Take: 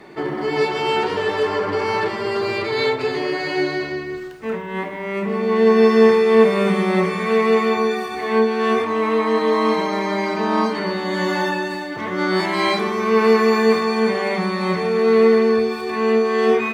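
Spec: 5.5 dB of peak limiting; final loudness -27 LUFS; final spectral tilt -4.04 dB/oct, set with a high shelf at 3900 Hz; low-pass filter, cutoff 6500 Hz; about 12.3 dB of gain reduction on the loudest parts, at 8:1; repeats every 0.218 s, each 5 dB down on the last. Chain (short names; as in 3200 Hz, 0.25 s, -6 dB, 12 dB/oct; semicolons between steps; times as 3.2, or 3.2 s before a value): LPF 6500 Hz; high shelf 3900 Hz -5 dB; compressor 8:1, threshold -22 dBFS; limiter -19 dBFS; feedback echo 0.218 s, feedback 56%, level -5 dB; gain -1.5 dB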